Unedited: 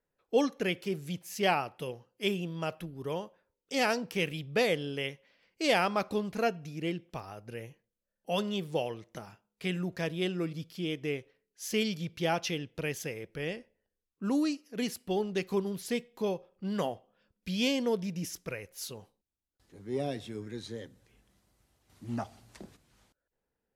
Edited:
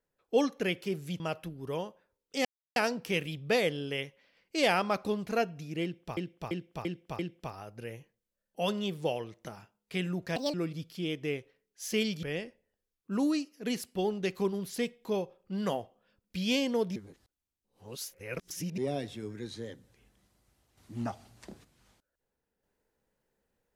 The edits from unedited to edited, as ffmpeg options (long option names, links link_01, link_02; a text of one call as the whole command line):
ffmpeg -i in.wav -filter_complex "[0:a]asplit=12[link_01][link_02][link_03][link_04][link_05][link_06][link_07][link_08][link_09][link_10][link_11][link_12];[link_01]atrim=end=1.202[link_13];[link_02]atrim=start=2.568:end=3.82,asetpts=PTS-STARTPTS,afade=type=out:start_time=1.248:duration=0.004:curve=hsin,apad=pad_dur=0.31[link_14];[link_03]atrim=start=3.82:end=7.232,asetpts=PTS-STARTPTS,afade=type=in:duration=0.004:curve=hsin[link_15];[link_04]atrim=start=6.888:end=7.232[link_16];[link_05]atrim=start=6.888:end=7.232[link_17];[link_06]atrim=start=6.888:end=7.232[link_18];[link_07]atrim=start=6.888:end=10.064[link_19];[link_08]atrim=start=10.06:end=10.34,asetpts=PTS-STARTPTS,asetrate=69237,aresample=44100[link_20];[link_09]atrim=start=10.336:end=12.032[link_21];[link_10]atrim=start=13.348:end=18.082[link_22];[link_11]atrim=start=18.078:end=19.902,asetpts=PTS-STARTPTS,areverse[link_23];[link_12]atrim=start=19.898[link_24];[link_14][link_15]concat=n=2:v=0:a=1[link_25];[link_13][link_25]acrossfade=duration=0.004:curve1=hsin:curve2=hsin[link_26];[link_26][link_16]acrossfade=duration=0.004:curve1=hsin:curve2=hsin[link_27];[link_27][link_17]acrossfade=duration=0.004:curve1=hsin:curve2=hsin[link_28];[link_28][link_18]acrossfade=duration=0.004:curve1=hsin:curve2=hsin[link_29];[link_29][link_19]acrossfade=duration=0.004:curve1=hsin:curve2=hsin[link_30];[link_30][link_20]acrossfade=duration=0.004:curve1=hsin:curve2=hsin[link_31];[link_31][link_21]acrossfade=duration=0.004:curve1=hsin:curve2=hsin[link_32];[link_32][link_22]acrossfade=duration=0.004:curve1=hsin:curve2=hsin[link_33];[link_33][link_23]acrossfade=duration=0.004:curve1=hsin:curve2=hsin[link_34];[link_34][link_24]acrossfade=duration=0.004:curve1=hsin:curve2=hsin" out.wav